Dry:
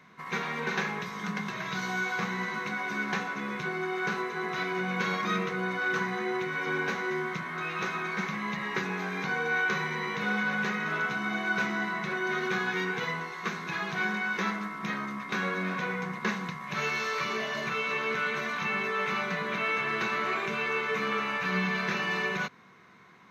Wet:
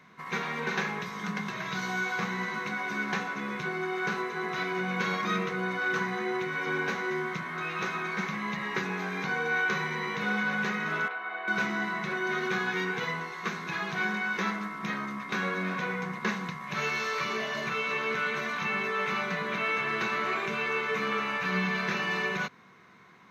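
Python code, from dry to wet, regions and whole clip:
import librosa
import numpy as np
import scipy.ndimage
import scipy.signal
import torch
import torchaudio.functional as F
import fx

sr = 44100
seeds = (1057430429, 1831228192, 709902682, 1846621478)

y = fx.chain(x, sr, fx.highpass(hz=470.0, slope=24),
    fx.air_absorb(metres=430.0), at=(11.08, 11.48))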